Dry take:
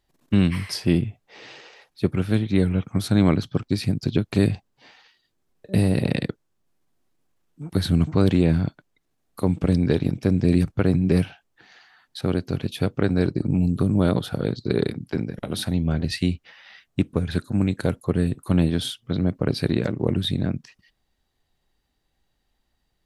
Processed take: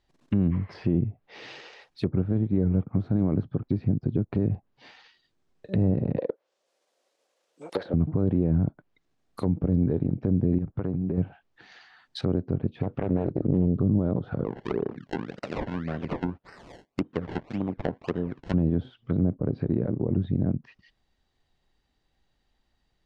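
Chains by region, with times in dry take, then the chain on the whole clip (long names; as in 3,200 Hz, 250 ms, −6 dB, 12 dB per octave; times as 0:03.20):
0:06.18–0:07.94: high-pass with resonance 530 Hz, resonance Q 5.5 + high-shelf EQ 2,400 Hz +11.5 dB + highs frequency-modulated by the lows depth 0.18 ms
0:10.58–0:11.18: low-shelf EQ 70 Hz −5.5 dB + downward compressor 10 to 1, threshold −23 dBFS
0:12.83–0:13.76: parametric band 2,700 Hz +8.5 dB 3 octaves + highs frequency-modulated by the lows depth 0.6 ms
0:14.44–0:18.54: high-pass filter 490 Hz 6 dB per octave + sample-and-hold swept by an LFO 25× 1.8 Hz
whole clip: brickwall limiter −14 dBFS; low-pass filter 6,300 Hz 12 dB per octave; treble cut that deepens with the level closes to 710 Hz, closed at −23.5 dBFS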